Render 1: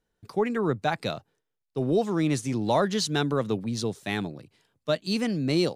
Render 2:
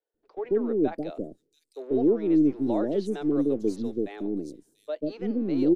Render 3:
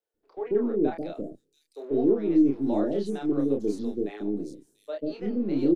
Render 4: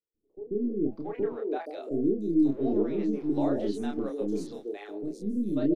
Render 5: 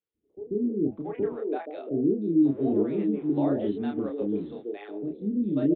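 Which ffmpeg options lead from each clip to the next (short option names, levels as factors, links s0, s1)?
-filter_complex "[0:a]firequalizer=gain_entry='entry(170,0);entry(300,12);entry(1000,-10);entry(5700,-13);entry(9100,-11)':delay=0.05:min_phase=1,acrossover=split=160|3600[s0][s1][s2];[s0]aeval=exprs='abs(val(0))':c=same[s3];[s3][s1][s2]amix=inputs=3:normalize=0,acrossover=split=540|4900[s4][s5][s6];[s4]adelay=140[s7];[s6]adelay=690[s8];[s7][s5][s8]amix=inputs=3:normalize=0,volume=0.631"
-filter_complex "[0:a]asplit=2[s0][s1];[s1]adelay=29,volume=0.708[s2];[s0][s2]amix=inputs=2:normalize=0,volume=0.794"
-filter_complex "[0:a]acrossover=split=390[s0][s1];[s1]adelay=680[s2];[s0][s2]amix=inputs=2:normalize=0"
-af "highpass=71,lowshelf=f=210:g=6.5,aresample=8000,aresample=44100"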